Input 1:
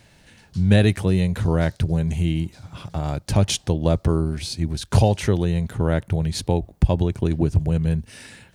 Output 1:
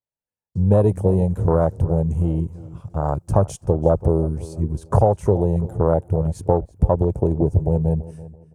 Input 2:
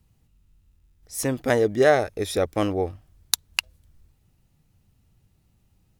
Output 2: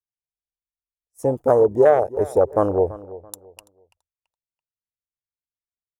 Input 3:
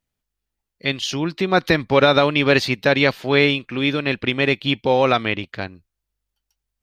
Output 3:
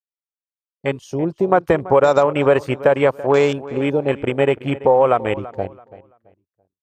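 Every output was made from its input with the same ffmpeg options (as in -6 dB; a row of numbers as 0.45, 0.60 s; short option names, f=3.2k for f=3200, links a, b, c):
-filter_complex "[0:a]afwtdn=0.0631,agate=range=-33dB:threshold=-42dB:ratio=3:detection=peak,equalizer=f=250:t=o:w=1:g=-5,equalizer=f=500:t=o:w=1:g=7,equalizer=f=1k:t=o:w=1:g=7,equalizer=f=2k:t=o:w=1:g=-6,equalizer=f=4k:t=o:w=1:g=-11,equalizer=f=8k:t=o:w=1:g=5,acompressor=threshold=-14dB:ratio=3,asplit=2[a][b];[b]adelay=334,lowpass=f=4.3k:p=1,volume=-17.5dB,asplit=2[c][d];[d]adelay=334,lowpass=f=4.3k:p=1,volume=0.28,asplit=2[e][f];[f]adelay=334,lowpass=f=4.3k:p=1,volume=0.28[g];[c][e][g]amix=inputs=3:normalize=0[h];[a][h]amix=inputs=2:normalize=0,adynamicequalizer=threshold=0.00708:dfrequency=5800:dqfactor=0.7:tfrequency=5800:tqfactor=0.7:attack=5:release=100:ratio=0.375:range=2.5:mode=boostabove:tftype=highshelf,volume=2.5dB"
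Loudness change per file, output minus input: +1.5, +5.0, +1.0 LU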